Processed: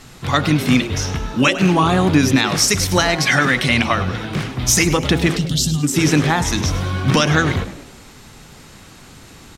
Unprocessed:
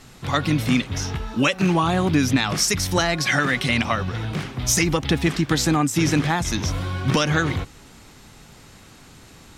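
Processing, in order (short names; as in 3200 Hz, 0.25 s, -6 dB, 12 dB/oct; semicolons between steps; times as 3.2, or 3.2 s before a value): spectral gain 5.37–5.83, 240–2700 Hz -23 dB; de-hum 55.9 Hz, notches 17; frequency-shifting echo 0.103 s, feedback 40%, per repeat +100 Hz, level -14 dB; gain +5 dB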